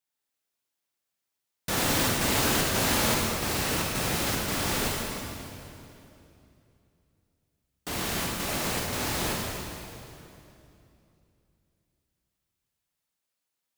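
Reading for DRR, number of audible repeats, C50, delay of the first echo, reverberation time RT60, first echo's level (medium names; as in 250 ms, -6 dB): -2.5 dB, no echo, -1.0 dB, no echo, 2.8 s, no echo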